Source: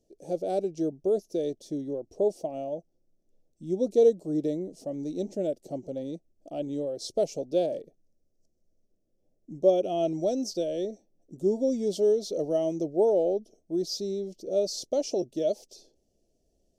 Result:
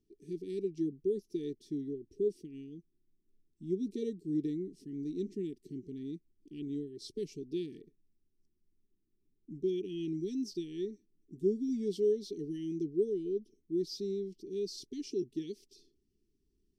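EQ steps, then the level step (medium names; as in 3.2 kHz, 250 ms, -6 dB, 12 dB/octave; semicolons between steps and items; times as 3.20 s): brick-wall FIR band-stop 440–1700 Hz; treble shelf 4.3 kHz -7.5 dB; peaking EQ 6.7 kHz -6.5 dB 0.34 oct; -4.0 dB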